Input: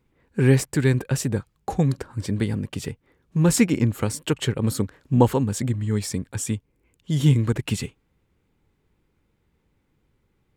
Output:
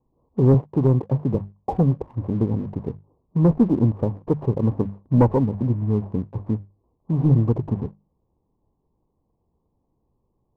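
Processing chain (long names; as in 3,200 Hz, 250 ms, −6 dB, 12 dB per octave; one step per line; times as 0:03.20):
variable-slope delta modulation 16 kbit/s
Butterworth low-pass 1,100 Hz 96 dB per octave
mains-hum notches 50/100/150/200 Hz
0:00.54–0:01.35: high-pass filter 82 Hz 24 dB per octave
leveller curve on the samples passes 1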